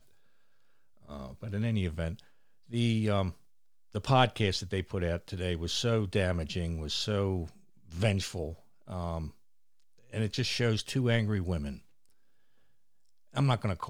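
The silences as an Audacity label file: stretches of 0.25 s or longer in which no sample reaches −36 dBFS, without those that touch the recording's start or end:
2.140000	2.730000	silence
3.300000	3.950000	silence
7.470000	7.920000	silence
8.530000	8.900000	silence
9.290000	10.130000	silence
11.760000	13.360000	silence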